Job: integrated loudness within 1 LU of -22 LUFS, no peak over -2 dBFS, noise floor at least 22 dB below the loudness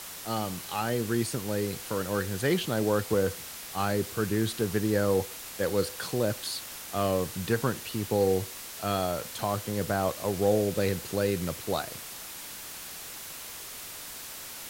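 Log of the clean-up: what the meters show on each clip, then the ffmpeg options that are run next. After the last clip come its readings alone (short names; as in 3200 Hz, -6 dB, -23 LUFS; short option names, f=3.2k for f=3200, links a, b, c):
noise floor -42 dBFS; noise floor target -52 dBFS; loudness -30.0 LUFS; peak -12.0 dBFS; loudness target -22.0 LUFS
-> -af "afftdn=nr=10:nf=-42"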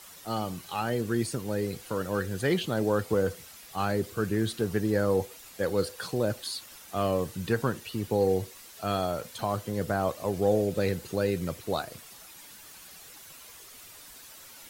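noise floor -49 dBFS; noise floor target -52 dBFS
-> -af "afftdn=nr=6:nf=-49"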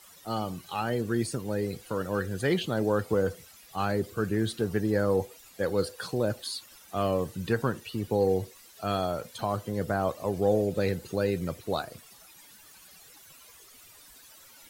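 noise floor -54 dBFS; loudness -30.0 LUFS; peak -12.5 dBFS; loudness target -22.0 LUFS
-> -af "volume=8dB"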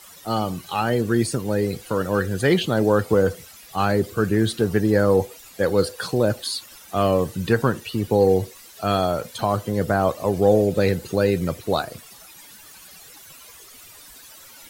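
loudness -22.0 LUFS; peak -4.5 dBFS; noise floor -46 dBFS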